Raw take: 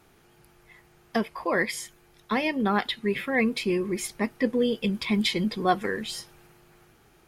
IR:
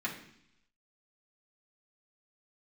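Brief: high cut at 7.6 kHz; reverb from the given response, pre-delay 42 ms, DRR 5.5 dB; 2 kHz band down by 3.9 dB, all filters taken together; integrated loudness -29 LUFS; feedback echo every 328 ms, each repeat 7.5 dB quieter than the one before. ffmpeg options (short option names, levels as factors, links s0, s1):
-filter_complex "[0:a]lowpass=7600,equalizer=f=2000:t=o:g=-4.5,aecho=1:1:328|656|984|1312|1640:0.422|0.177|0.0744|0.0312|0.0131,asplit=2[s0][s1];[1:a]atrim=start_sample=2205,adelay=42[s2];[s1][s2]afir=irnorm=-1:irlink=0,volume=0.299[s3];[s0][s3]amix=inputs=2:normalize=0,volume=0.708"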